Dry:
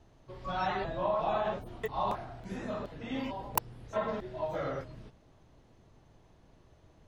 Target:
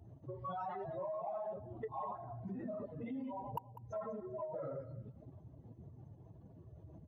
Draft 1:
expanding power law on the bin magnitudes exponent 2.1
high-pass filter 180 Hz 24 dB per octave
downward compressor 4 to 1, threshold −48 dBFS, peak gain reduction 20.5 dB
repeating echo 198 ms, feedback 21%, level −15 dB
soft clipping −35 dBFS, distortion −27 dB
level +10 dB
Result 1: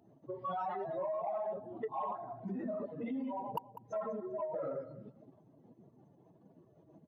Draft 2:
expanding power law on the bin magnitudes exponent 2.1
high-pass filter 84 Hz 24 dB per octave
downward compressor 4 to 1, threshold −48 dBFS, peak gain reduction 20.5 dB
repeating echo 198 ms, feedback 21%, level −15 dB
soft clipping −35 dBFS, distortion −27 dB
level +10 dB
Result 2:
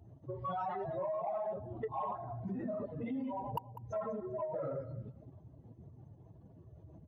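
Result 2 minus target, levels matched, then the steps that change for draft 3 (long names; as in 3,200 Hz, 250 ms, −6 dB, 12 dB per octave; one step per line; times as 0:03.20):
downward compressor: peak gain reduction −4.5 dB
change: downward compressor 4 to 1, threshold −54 dBFS, peak gain reduction 25 dB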